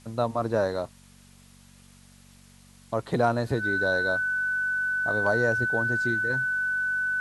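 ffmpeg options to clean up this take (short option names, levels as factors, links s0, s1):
-af "bandreject=f=47.2:t=h:w=4,bandreject=f=94.4:t=h:w=4,bandreject=f=141.6:t=h:w=4,bandreject=f=188.8:t=h:w=4,bandreject=f=236:t=h:w=4,bandreject=f=1500:w=30,agate=range=0.0891:threshold=0.00501"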